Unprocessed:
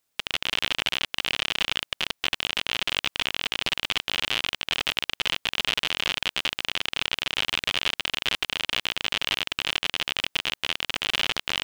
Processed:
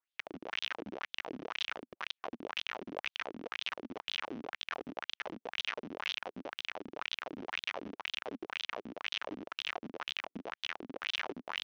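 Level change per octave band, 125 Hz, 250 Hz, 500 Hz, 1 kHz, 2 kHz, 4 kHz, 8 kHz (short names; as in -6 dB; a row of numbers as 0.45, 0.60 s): -13.5, -3.0, -4.5, -8.0, -12.5, -15.5, -19.0 dB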